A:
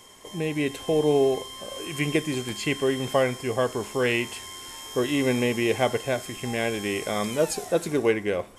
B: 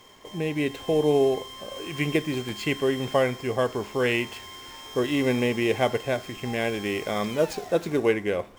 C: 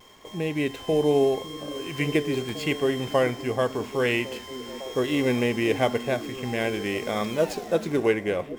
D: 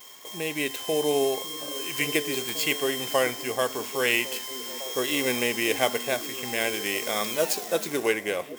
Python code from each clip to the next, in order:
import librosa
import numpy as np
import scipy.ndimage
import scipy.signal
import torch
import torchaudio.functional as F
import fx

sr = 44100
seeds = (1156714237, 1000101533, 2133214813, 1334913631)

y1 = scipy.signal.medfilt(x, 5)
y2 = fx.vibrato(y1, sr, rate_hz=0.85, depth_cents=30.0)
y2 = fx.echo_stepped(y2, sr, ms=553, hz=220.0, octaves=0.7, feedback_pct=70, wet_db=-9.5)
y3 = fx.riaa(y2, sr, side='recording')